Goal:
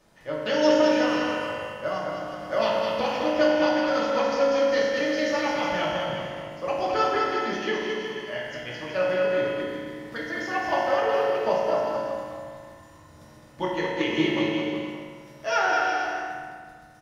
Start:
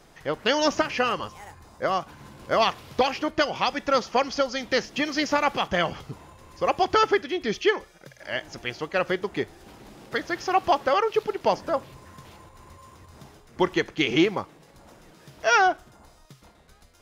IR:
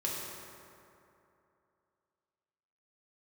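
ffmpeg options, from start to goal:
-filter_complex "[0:a]aecho=1:1:210|367.5|485.6|574.2|640.7:0.631|0.398|0.251|0.158|0.1[a];[1:a]atrim=start_sample=2205,asetrate=70560,aresample=44100[b];[a][b]afir=irnorm=-1:irlink=0,volume=-4.5dB"

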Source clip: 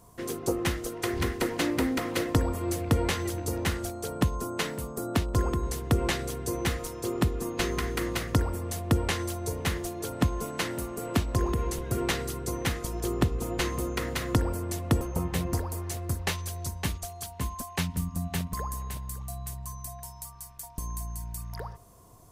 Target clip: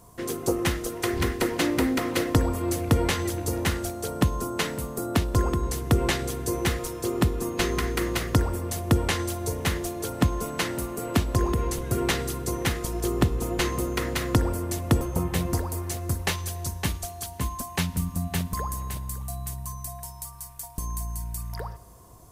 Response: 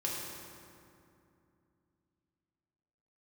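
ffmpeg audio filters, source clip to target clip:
-filter_complex "[0:a]asplit=2[a][b];[b]aemphasis=mode=production:type=cd[c];[1:a]atrim=start_sample=2205[d];[c][d]afir=irnorm=-1:irlink=0,volume=-22.5dB[e];[a][e]amix=inputs=2:normalize=0,volume=2.5dB"

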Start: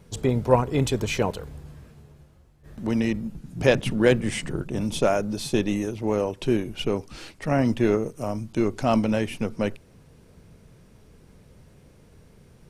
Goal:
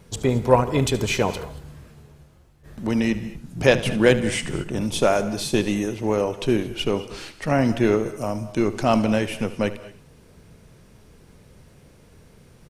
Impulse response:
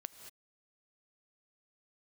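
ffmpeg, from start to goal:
-filter_complex "[0:a]aecho=1:1:74:0.168,asplit=2[a][b];[1:a]atrim=start_sample=2205,lowshelf=f=490:g=-8.5[c];[b][c]afir=irnorm=-1:irlink=0,volume=4.5dB[d];[a][d]amix=inputs=2:normalize=0,volume=-1.5dB"

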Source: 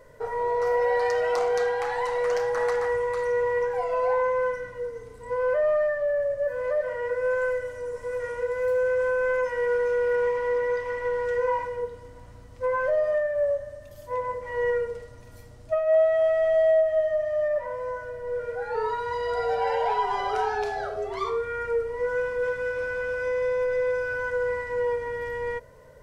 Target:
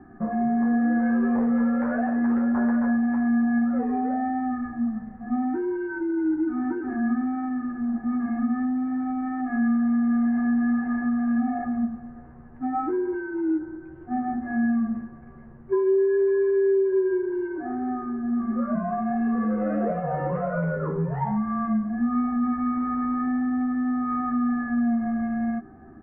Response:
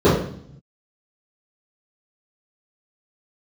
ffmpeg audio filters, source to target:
-filter_complex "[0:a]aemphasis=mode=reproduction:type=bsi,acompressor=threshold=-24dB:ratio=6,asplit=2[a][b];[b]asoftclip=type=tanh:threshold=-32dB,volume=-7dB[c];[a][c]amix=inputs=2:normalize=0,highpass=f=170:t=q:w=0.5412,highpass=f=170:t=q:w=1.307,lowpass=f=2.1k:t=q:w=0.5176,lowpass=f=2.1k:t=q:w=0.7071,lowpass=f=2.1k:t=q:w=1.932,afreqshift=-250,asplit=2[d][e];[e]adelay=13,volume=-4.5dB[f];[d][f]amix=inputs=2:normalize=0"

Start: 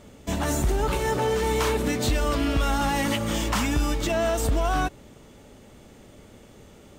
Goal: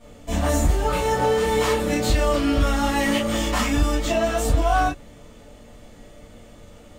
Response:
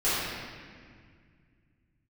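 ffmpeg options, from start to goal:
-filter_complex "[1:a]atrim=start_sample=2205,atrim=end_sample=4410,asetrate=70560,aresample=44100[a];[0:a][a]afir=irnorm=-1:irlink=0,volume=-4dB"

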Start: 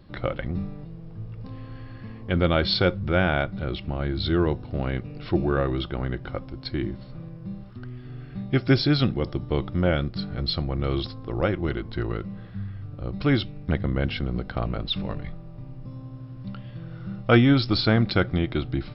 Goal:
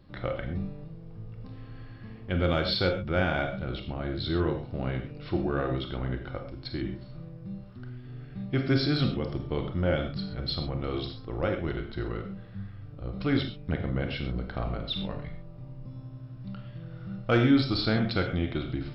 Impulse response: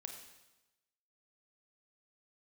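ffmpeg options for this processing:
-filter_complex "[0:a]asoftclip=type=tanh:threshold=-7.5dB[a];[1:a]atrim=start_sample=2205,atrim=end_sample=6174[b];[a][b]afir=irnorm=-1:irlink=0"

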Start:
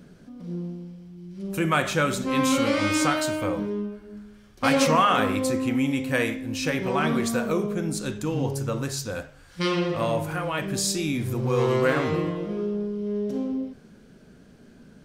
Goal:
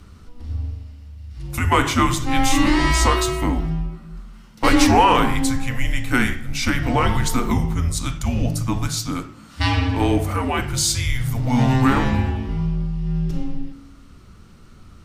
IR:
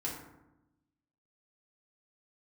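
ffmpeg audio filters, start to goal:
-filter_complex "[0:a]afreqshift=-250,bandreject=f=54.96:t=h:w=4,bandreject=f=109.92:t=h:w=4,acontrast=40,asplit=2[a][b];[1:a]atrim=start_sample=2205[c];[b][c]afir=irnorm=-1:irlink=0,volume=-17dB[d];[a][d]amix=inputs=2:normalize=0"

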